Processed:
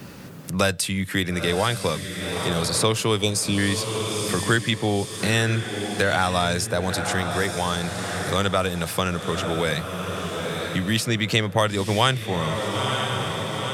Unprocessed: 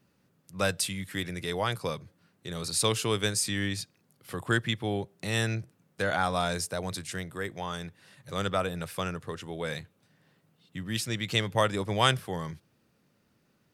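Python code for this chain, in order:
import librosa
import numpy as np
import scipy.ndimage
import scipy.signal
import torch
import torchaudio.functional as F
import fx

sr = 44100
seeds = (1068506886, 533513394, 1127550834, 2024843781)

p1 = fx.spec_erase(x, sr, start_s=3.17, length_s=0.41, low_hz=1100.0, high_hz=2200.0)
p2 = p1 + fx.echo_diffused(p1, sr, ms=938, feedback_pct=44, wet_db=-10.5, dry=0)
p3 = fx.band_squash(p2, sr, depth_pct=70)
y = p3 * librosa.db_to_amplitude(7.5)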